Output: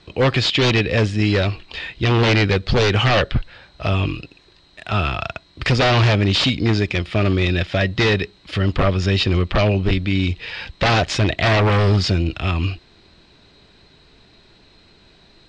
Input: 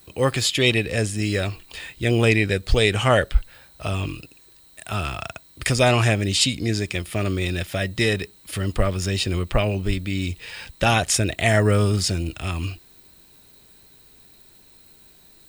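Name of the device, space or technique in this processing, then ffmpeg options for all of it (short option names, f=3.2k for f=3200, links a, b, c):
synthesiser wavefolder: -af "aeval=exprs='0.15*(abs(mod(val(0)/0.15+3,4)-2)-1)':c=same,lowpass=f=4.7k:w=0.5412,lowpass=f=4.7k:w=1.3066,volume=6.5dB"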